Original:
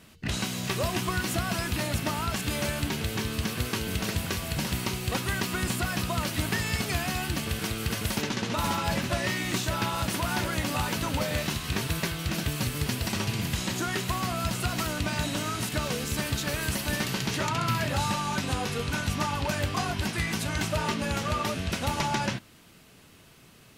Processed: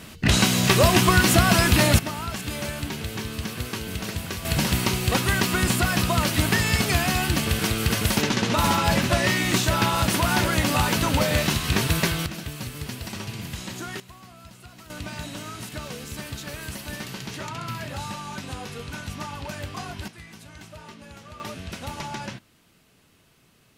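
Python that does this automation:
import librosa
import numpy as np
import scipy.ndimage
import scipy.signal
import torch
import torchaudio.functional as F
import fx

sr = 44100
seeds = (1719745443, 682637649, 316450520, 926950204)

y = fx.gain(x, sr, db=fx.steps((0.0, 11.5), (1.99, -1.0), (4.45, 7.0), (12.26, -4.5), (14.0, -17.0), (14.9, -5.5), (20.08, -15.0), (21.4, -5.5)))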